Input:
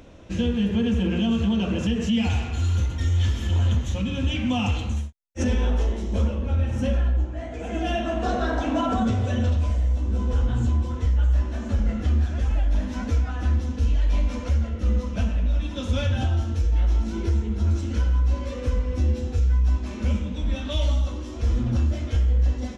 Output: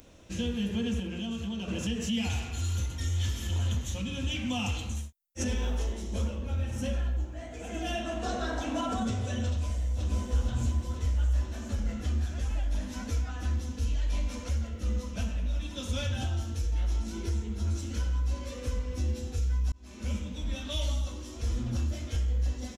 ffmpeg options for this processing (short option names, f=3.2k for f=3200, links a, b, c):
-filter_complex "[0:a]asplit=2[a][b];[b]afade=t=in:st=9.5:d=0.01,afade=t=out:st=10.01:d=0.01,aecho=0:1:480|960|1440|1920|2400|2880|3360|3840|4320|4800|5280:0.891251|0.579313|0.376554|0.24476|0.159094|0.103411|0.0672172|0.0436912|0.0283992|0.0184595|0.0119987[c];[a][c]amix=inputs=2:normalize=0,asplit=4[d][e][f][g];[d]atrim=end=1.002[h];[e]atrim=start=0.998:end=1.682,asetpts=PTS-STARTPTS,volume=-4.5dB[i];[f]atrim=start=1.678:end=19.72,asetpts=PTS-STARTPTS,afade=t=out:st=18.038:d=0.004:c=hsin[j];[g]atrim=start=19.72,asetpts=PTS-STARTPTS,afade=t=in:d=0.43[k];[h][i]acrossfade=d=0.004:c1=hsin:c2=hsin[l];[j][k]concat=n=2:v=0:a=1[m];[l][m]acrossfade=d=0.004:c1=hsin:c2=hsin,aemphasis=mode=production:type=75fm,volume=-7.5dB"